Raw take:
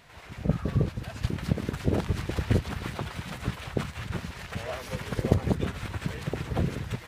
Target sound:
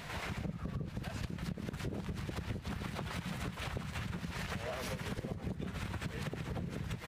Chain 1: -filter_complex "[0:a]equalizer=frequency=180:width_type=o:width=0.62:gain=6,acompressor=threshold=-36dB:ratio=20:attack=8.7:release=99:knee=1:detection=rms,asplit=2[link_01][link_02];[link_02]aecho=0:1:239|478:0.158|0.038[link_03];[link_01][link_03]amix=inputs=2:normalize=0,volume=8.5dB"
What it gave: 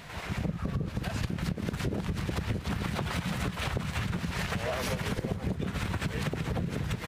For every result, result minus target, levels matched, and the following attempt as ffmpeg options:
echo 80 ms late; downward compressor: peak gain reduction −8 dB
-filter_complex "[0:a]equalizer=frequency=180:width_type=o:width=0.62:gain=6,acompressor=threshold=-36dB:ratio=20:attack=8.7:release=99:knee=1:detection=rms,asplit=2[link_01][link_02];[link_02]aecho=0:1:159|318:0.158|0.038[link_03];[link_01][link_03]amix=inputs=2:normalize=0,volume=8.5dB"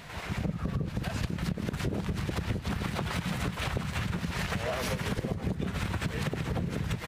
downward compressor: peak gain reduction −8 dB
-filter_complex "[0:a]equalizer=frequency=180:width_type=o:width=0.62:gain=6,acompressor=threshold=-44.5dB:ratio=20:attack=8.7:release=99:knee=1:detection=rms,asplit=2[link_01][link_02];[link_02]aecho=0:1:159|318:0.158|0.038[link_03];[link_01][link_03]amix=inputs=2:normalize=0,volume=8.5dB"

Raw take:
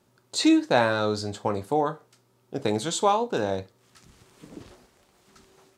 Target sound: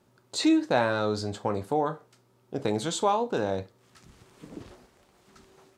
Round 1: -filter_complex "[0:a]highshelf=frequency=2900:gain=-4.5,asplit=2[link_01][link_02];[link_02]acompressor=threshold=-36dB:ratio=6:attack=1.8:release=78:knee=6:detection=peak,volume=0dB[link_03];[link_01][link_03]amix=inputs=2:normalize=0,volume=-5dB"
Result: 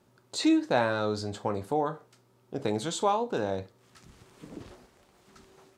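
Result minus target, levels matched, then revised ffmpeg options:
downward compressor: peak gain reduction +8.5 dB
-filter_complex "[0:a]highshelf=frequency=2900:gain=-4.5,asplit=2[link_01][link_02];[link_02]acompressor=threshold=-26dB:ratio=6:attack=1.8:release=78:knee=6:detection=peak,volume=0dB[link_03];[link_01][link_03]amix=inputs=2:normalize=0,volume=-5dB"

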